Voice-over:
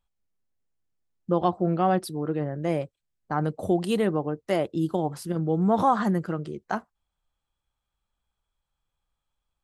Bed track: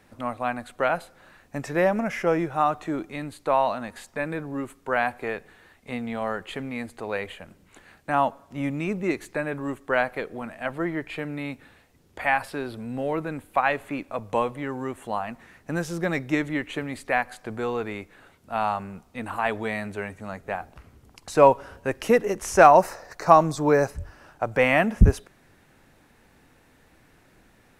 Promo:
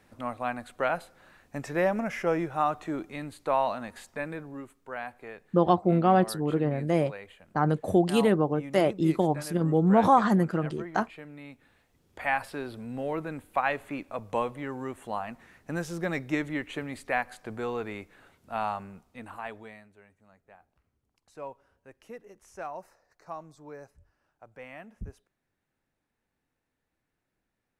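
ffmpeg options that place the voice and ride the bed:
-filter_complex "[0:a]adelay=4250,volume=1.5dB[a];[1:a]volume=4.5dB,afade=t=out:st=4.08:d=0.67:silence=0.354813,afade=t=in:st=11.56:d=0.79:silence=0.375837,afade=t=out:st=18.5:d=1.39:silence=0.0944061[b];[a][b]amix=inputs=2:normalize=0"

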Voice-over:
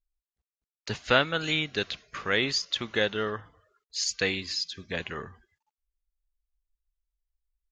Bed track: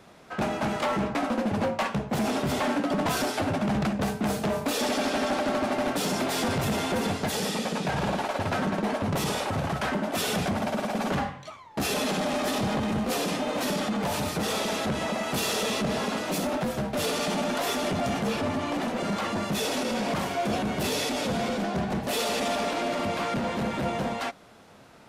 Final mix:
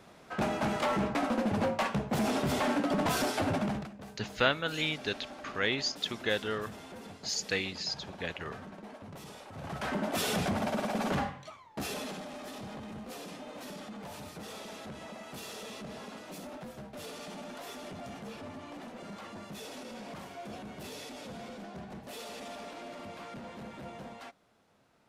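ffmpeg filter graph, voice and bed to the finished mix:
-filter_complex "[0:a]adelay=3300,volume=-4.5dB[a];[1:a]volume=13dB,afade=t=out:st=3.58:d=0.3:silence=0.149624,afade=t=in:st=9.52:d=0.53:silence=0.158489,afade=t=out:st=11.19:d=1.08:silence=0.237137[b];[a][b]amix=inputs=2:normalize=0"

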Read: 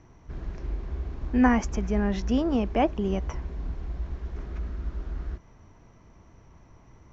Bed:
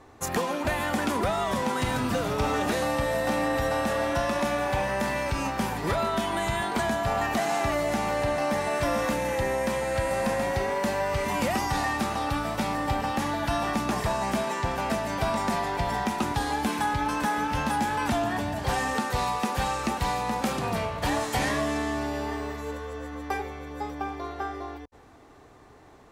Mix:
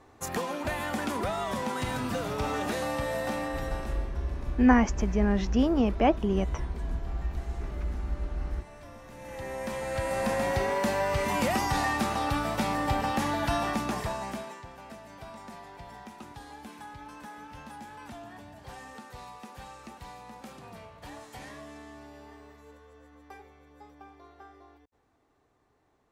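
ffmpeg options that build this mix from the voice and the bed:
-filter_complex "[0:a]adelay=3250,volume=0.5dB[a];[1:a]volume=18dB,afade=t=out:st=3.21:d=0.91:silence=0.11885,afade=t=in:st=9.1:d=1.41:silence=0.0749894,afade=t=out:st=13.47:d=1.18:silence=0.133352[b];[a][b]amix=inputs=2:normalize=0"

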